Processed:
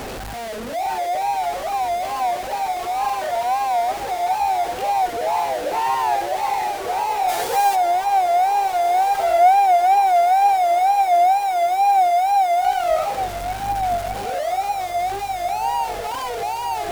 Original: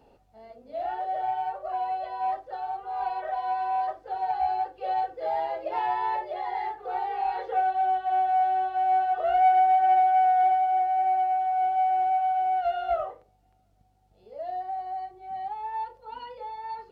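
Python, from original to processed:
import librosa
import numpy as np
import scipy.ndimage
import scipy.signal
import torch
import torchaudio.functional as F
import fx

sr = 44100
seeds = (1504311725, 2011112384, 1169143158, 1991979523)

y = x + 0.5 * 10.0 ** (-29.0 / 20.0) * np.sign(x)
y = fx.high_shelf(y, sr, hz=3500.0, db=11.5, at=(7.28, 7.75), fade=0.02)
y = fx.echo_diffused(y, sr, ms=1595, feedback_pct=67, wet_db=-10.5)
y = fx.wow_flutter(y, sr, seeds[0], rate_hz=2.1, depth_cents=130.0)
y = y * 10.0 ** (4.0 / 20.0)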